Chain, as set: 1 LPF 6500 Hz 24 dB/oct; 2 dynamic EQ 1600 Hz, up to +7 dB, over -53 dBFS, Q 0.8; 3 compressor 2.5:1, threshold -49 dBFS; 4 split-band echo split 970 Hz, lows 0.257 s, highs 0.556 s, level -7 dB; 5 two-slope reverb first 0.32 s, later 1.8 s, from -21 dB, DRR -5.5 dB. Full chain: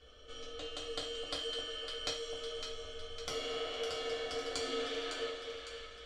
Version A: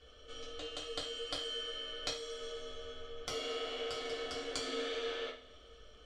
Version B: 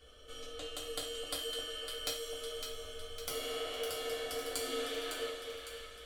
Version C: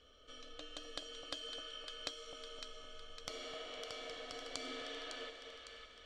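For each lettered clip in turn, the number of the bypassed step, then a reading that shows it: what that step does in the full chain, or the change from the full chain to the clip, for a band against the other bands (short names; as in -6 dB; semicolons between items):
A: 4, momentary loudness spread change +2 LU; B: 1, 8 kHz band +5.5 dB; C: 5, echo-to-direct 7.0 dB to -5.5 dB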